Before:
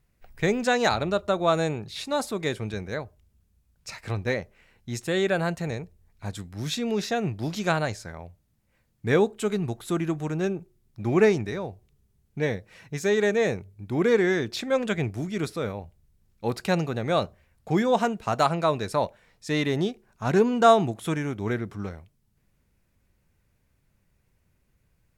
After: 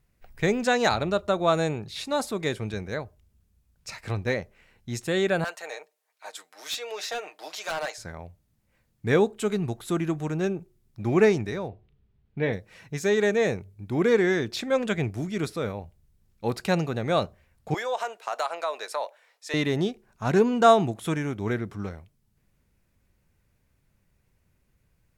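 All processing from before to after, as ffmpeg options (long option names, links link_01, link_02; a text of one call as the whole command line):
ffmpeg -i in.wav -filter_complex "[0:a]asettb=1/sr,asplit=3[link_01][link_02][link_03];[link_01]atrim=end=5.444[link_04];[link_02]atrim=start=5.44:end=7.98,asetpts=PTS-STARTPTS,afade=type=in:duration=0.004:curve=qsin,afade=type=out:start_time=2.536:duration=0.004:curve=qsin,highpass=frequency=570:width=0.5412,highpass=frequency=570:width=1.3066,aecho=1:1:6.5:0.52,atrim=end_sample=112014,asoftclip=type=hard:threshold=-26dB[link_05];[link_03]atrim=start=7.976[link_06];[link_04][link_05]acrossfade=duration=0.004:curve1=hsin:curve2=qsin[link_07];[link_07][link_06]acrossfade=duration=0.004:curve1=qsin:curve2=hsin,asettb=1/sr,asplit=3[link_08][link_09][link_10];[link_08]atrim=end=11.684[link_11];[link_09]atrim=start=11.68:end=12.53,asetpts=PTS-STARTPTS,afade=type=in:duration=0.004:curve=qsin,afade=type=out:start_time=0.846:duration=0.004:curve=qsin,lowpass=frequency=3700:width=0.5412,lowpass=frequency=3700:width=1.3066,asplit=2[link_12][link_13];[link_13]adelay=36,volume=-12dB[link_14];[link_12][link_14]amix=inputs=2:normalize=0,atrim=end_sample=37485[link_15];[link_10]atrim=start=12.526[link_16];[link_11][link_15]acrossfade=duration=0.004:curve1=hsin:curve2=qsin[link_17];[link_17][link_16]acrossfade=duration=0.004:curve1=qsin:curve2=hsin,asettb=1/sr,asplit=3[link_18][link_19][link_20];[link_18]atrim=end=17.744[link_21];[link_19]atrim=start=17.74:end=19.54,asetpts=PTS-STARTPTS,afade=type=in:duration=0.004:curve=qsin,afade=type=out:start_time=1.796:duration=0.004:curve=qsin,highpass=frequency=530:width=0.5412,highpass=frequency=530:width=1.3066,acompressor=threshold=-25dB:ratio=3:attack=3.2:release=140:knee=1:detection=peak[link_22];[link_20]atrim=start=19.536[link_23];[link_21][link_22]acrossfade=duration=0.004:curve1=hsin:curve2=qsin[link_24];[link_24][link_23]acrossfade=duration=0.004:curve1=qsin:curve2=hsin" out.wav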